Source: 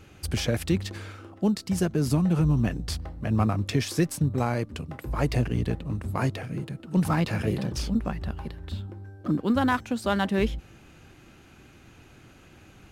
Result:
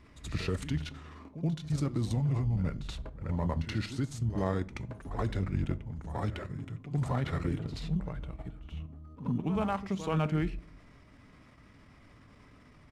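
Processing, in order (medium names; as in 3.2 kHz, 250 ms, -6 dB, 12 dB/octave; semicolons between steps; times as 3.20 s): treble shelf 6.4 kHz -6 dB; level held to a coarse grid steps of 9 dB; pitch shift -4 st; reverse echo 78 ms -12 dB; reverberation RT60 0.50 s, pre-delay 7 ms, DRR 16 dB; trim -2.5 dB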